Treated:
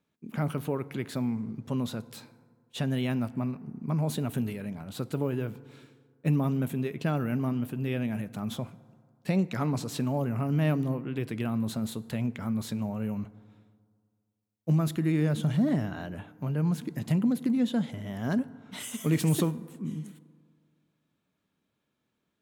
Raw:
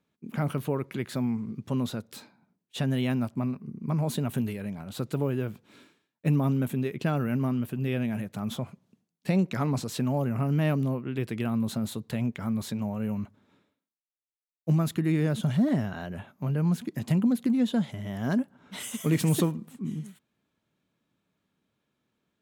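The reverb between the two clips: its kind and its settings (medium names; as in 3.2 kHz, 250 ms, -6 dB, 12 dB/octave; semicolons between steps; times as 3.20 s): FDN reverb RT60 2 s, low-frequency decay 0.95×, high-frequency decay 0.4×, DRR 16.5 dB; trim -1.5 dB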